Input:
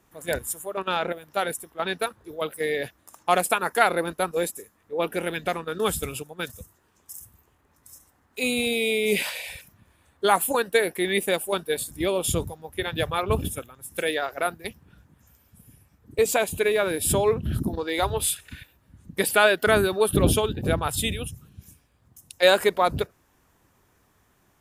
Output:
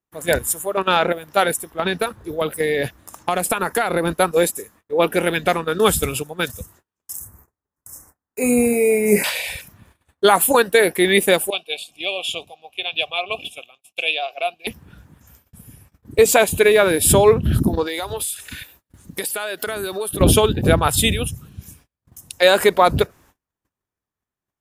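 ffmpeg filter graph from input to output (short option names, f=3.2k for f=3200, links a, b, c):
-filter_complex "[0:a]asettb=1/sr,asplit=3[a][b][c];[a]atrim=end=1.734[d];[b]atrim=start=1.73:end=4.15,asetpts=PTS-STARTPTS,afade=t=in:d=0.004:c=qsin,afade=t=out:st=2.416:d=0.004:c=qsin,acompressor=threshold=-25dB:ratio=6:attack=3.2:release=140:knee=1:detection=peak,lowshelf=f=210:g=7[e];[c]atrim=start=4.146[f];[d][e]acrossfade=d=0.004:c1=hsin:c2=qsin[g];[g][f]acrossfade=d=0.004:c1=qsin:c2=hsin,asettb=1/sr,asplit=3[h][i][j];[h]atrim=end=7.174[k];[i]atrim=start=7.17:end=9.24,asetpts=PTS-STARTPTS,afade=t=in:d=0.004:c=qsin,afade=t=out:st=2.066:d=0.004:c=qsin,asuperstop=centerf=3400:order=4:qfactor=0.82,asplit=2[l][m];[m]adelay=29,volume=-8dB[n];[l][n]amix=inputs=2:normalize=0,atrim=end_sample=91287[o];[j]atrim=start=9.236[p];[k][o]acrossfade=d=0.004:c1=hsin:c2=qsin[q];[q][p]acrossfade=d=0.004:c1=qsin:c2=hsin,asettb=1/sr,asplit=3[r][s][t];[r]atrim=end=11.504[u];[s]atrim=start=11.5:end=14.67,asetpts=PTS-STARTPTS,afade=t=in:d=0.004:c=qsin,afade=t=out:st=3.166:d=0.004:c=qsin,asplit=3[v][w][x];[v]bandpass=f=730:t=q:w=8,volume=0dB[y];[w]bandpass=f=1.09k:t=q:w=8,volume=-6dB[z];[x]bandpass=f=2.44k:t=q:w=8,volume=-9dB[aa];[y][z][aa]amix=inputs=3:normalize=0,highshelf=f=2k:t=q:w=3:g=13[ab];[t]atrim=start=14.666[ac];[u][ab]acrossfade=d=0.004:c1=hsin:c2=qsin[ad];[ad][ac]acrossfade=d=0.004:c1=qsin:c2=hsin,asettb=1/sr,asplit=3[ae][af][ag];[ae]atrim=end=17.864[ah];[af]atrim=start=17.86:end=20.21,asetpts=PTS-STARTPTS,afade=t=in:d=0.004:c=qsin,afade=t=out:st=2.346:d=0.004:c=qsin,bass=f=250:g=-7,treble=f=4k:g=7,acompressor=threshold=-31dB:ratio=8:attack=3.2:release=140:knee=1:detection=peak[ai];[ag]atrim=start=20.206[aj];[ah][ai]acrossfade=d=0.004:c1=hsin:c2=qsin[ak];[ak][aj]acrossfade=d=0.004:c1=qsin:c2=hsin,agate=range=-34dB:threshold=-58dB:ratio=16:detection=peak,alimiter=level_in=10dB:limit=-1dB:release=50:level=0:latency=1,volume=-1dB"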